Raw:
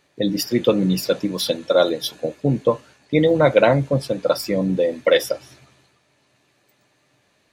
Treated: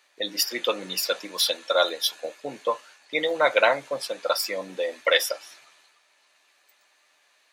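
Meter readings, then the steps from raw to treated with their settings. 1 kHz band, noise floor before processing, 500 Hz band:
-1.0 dB, -64 dBFS, -8.0 dB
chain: HPF 910 Hz 12 dB/oct; gain +2 dB

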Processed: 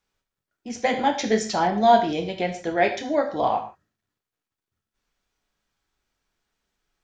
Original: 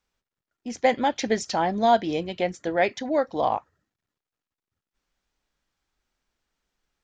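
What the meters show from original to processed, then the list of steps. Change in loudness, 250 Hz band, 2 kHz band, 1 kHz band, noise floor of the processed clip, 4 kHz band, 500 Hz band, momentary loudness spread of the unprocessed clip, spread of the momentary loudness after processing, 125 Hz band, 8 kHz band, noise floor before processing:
+2.0 dB, +2.0 dB, +2.0 dB, +2.5 dB, under -85 dBFS, +2.0 dB, +1.5 dB, 8 LU, 10 LU, +2.0 dB, +2.0 dB, under -85 dBFS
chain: non-linear reverb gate 0.18 s falling, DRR 2.5 dB

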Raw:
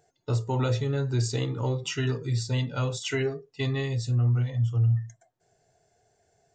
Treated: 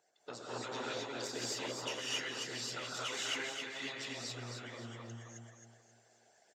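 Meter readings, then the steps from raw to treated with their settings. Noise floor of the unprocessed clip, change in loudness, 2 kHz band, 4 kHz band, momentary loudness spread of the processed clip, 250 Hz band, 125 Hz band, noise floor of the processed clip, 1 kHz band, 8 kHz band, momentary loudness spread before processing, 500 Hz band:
-72 dBFS, -12.0 dB, -3.0 dB, -1.5 dB, 13 LU, -14.5 dB, -27.5 dB, -70 dBFS, -5.5 dB, -2.0 dB, 6 LU, -12.0 dB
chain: one diode to ground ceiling -28 dBFS; on a send: feedback echo 0.267 s, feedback 34%, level -6.5 dB; on the sum: non-linear reverb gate 0.29 s rising, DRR -8 dB; harmonic-percussive split harmonic -16 dB; weighting filter A; in parallel at +2 dB: compressor, threshold -48 dBFS, peak gain reduction 19 dB; on the sum: gain -7 dB

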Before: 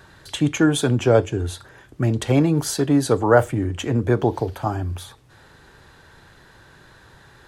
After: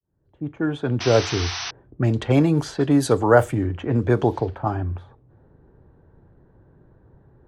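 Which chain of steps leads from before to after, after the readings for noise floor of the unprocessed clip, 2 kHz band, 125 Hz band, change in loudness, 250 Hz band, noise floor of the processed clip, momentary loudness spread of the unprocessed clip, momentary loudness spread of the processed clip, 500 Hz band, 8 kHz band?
-51 dBFS, -0.5 dB, -1.0 dB, -1.0 dB, -1.5 dB, -59 dBFS, 12 LU, 13 LU, -0.5 dB, -4.5 dB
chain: opening faded in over 1.41 s; low-pass opened by the level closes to 420 Hz, open at -14 dBFS; painted sound noise, 1–1.71, 650–6200 Hz -30 dBFS

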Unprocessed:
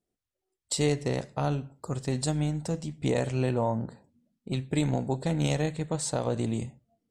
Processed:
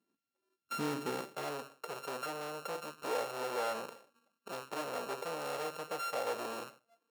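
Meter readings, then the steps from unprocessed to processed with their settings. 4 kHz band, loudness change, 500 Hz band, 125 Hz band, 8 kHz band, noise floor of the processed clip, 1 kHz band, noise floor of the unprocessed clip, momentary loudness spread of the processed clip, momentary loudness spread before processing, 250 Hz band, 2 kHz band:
-6.5 dB, -9.5 dB, -7.5 dB, -25.0 dB, -11.5 dB, under -85 dBFS, -1.5 dB, under -85 dBFS, 9 LU, 8 LU, -15.5 dB, -2.5 dB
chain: sample sorter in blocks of 32 samples; tube stage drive 36 dB, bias 0.45; high-pass sweep 240 Hz -> 500 Hz, 0.85–1.7; gain +1 dB

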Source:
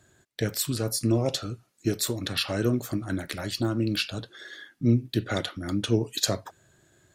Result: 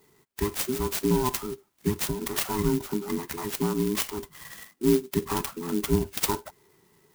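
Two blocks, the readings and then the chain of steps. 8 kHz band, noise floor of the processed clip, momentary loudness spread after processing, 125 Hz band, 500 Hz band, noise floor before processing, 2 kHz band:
0.0 dB, -64 dBFS, 9 LU, -4.5 dB, +2.5 dB, -67 dBFS, -2.0 dB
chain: band inversion scrambler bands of 500 Hz; clock jitter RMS 0.076 ms

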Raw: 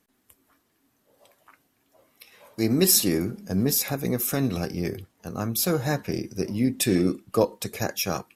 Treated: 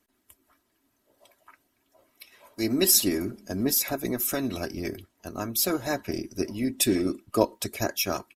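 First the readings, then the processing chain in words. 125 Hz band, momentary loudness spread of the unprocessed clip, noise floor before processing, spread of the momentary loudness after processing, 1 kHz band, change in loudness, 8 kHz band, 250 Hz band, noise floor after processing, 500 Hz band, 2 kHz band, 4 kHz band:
-8.5 dB, 12 LU, -70 dBFS, 13 LU, -0.5 dB, -1.5 dB, -0.5 dB, -3.0 dB, -73 dBFS, -2.0 dB, -0.5 dB, 0.0 dB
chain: comb 3.1 ms, depth 66%; harmonic-percussive split harmonic -8 dB

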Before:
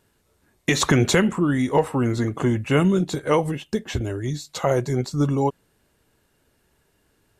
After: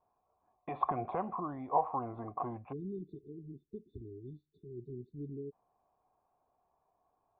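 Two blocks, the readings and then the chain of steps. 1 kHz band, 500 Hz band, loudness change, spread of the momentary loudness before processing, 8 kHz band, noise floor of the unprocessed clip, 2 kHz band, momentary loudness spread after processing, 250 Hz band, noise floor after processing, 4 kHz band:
-7.5 dB, -19.0 dB, -17.5 dB, 9 LU, under -40 dB, -66 dBFS, -30.5 dB, 16 LU, -22.0 dB, -80 dBFS, under -40 dB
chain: vibrato 0.76 Hz 35 cents; in parallel at 0 dB: limiter -16 dBFS, peak gain reduction 9 dB; on the sum: spectral delete 2.72–5.52, 450–3500 Hz; vocal tract filter a

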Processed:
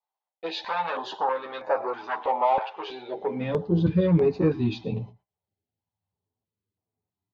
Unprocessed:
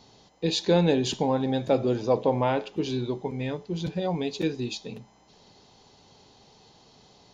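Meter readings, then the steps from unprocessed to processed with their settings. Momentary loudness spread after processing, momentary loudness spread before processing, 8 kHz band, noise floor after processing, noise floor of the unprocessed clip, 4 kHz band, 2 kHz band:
13 LU, 10 LU, under -15 dB, under -85 dBFS, -58 dBFS, -6.0 dB, +2.5 dB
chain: high shelf 4200 Hz -8.5 dB; gate -50 dBFS, range -41 dB; in parallel at -3 dB: limiter -17 dBFS, peak gain reduction 7 dB; on the sum: soft clip -18 dBFS, distortion -12 dB; on a send: echo 0.114 s -21.5 dB; on the sum: chorus voices 6, 0.55 Hz, delay 11 ms, depth 1.9 ms; vibrato 0.37 Hz 9.2 cents; high-pass sweep 880 Hz -> 97 Hz, 3.06–3.66; air absorption 290 m; stepped notch 3.1 Hz 250–3300 Hz; gain +6.5 dB

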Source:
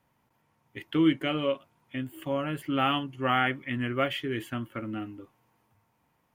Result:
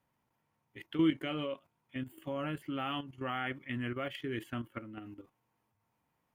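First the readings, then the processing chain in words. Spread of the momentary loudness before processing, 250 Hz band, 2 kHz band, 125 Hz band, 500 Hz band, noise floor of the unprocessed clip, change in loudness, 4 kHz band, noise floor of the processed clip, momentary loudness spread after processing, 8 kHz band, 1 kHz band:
13 LU, -6.5 dB, -9.0 dB, -7.0 dB, -8.0 dB, -72 dBFS, -7.5 dB, -9.0 dB, -80 dBFS, 17 LU, n/a, -10.5 dB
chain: level quantiser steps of 11 dB; gain -3 dB

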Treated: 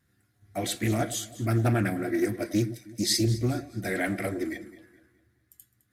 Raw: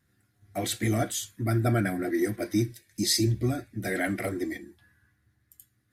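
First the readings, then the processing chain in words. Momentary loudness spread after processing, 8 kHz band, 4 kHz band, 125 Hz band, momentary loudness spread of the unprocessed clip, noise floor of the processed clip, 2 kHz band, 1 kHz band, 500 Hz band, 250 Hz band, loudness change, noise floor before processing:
9 LU, -0.5 dB, 0.0 dB, +0.5 dB, 9 LU, -71 dBFS, 0.0 dB, 0.0 dB, 0.0 dB, 0.0 dB, 0.0 dB, -72 dBFS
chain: echo with dull and thin repeats by turns 0.105 s, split 910 Hz, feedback 61%, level -13 dB; Doppler distortion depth 0.21 ms

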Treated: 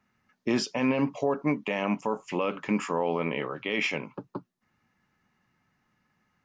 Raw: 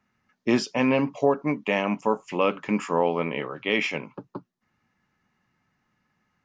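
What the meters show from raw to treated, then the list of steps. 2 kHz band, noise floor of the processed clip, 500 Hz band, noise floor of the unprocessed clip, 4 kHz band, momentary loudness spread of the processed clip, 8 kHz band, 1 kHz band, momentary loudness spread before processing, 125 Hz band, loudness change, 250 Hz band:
-3.5 dB, -75 dBFS, -5.0 dB, -75 dBFS, -2.5 dB, 10 LU, 0.0 dB, -4.5 dB, 12 LU, -2.0 dB, -3.5 dB, -2.5 dB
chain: limiter -16 dBFS, peak gain reduction 7.5 dB

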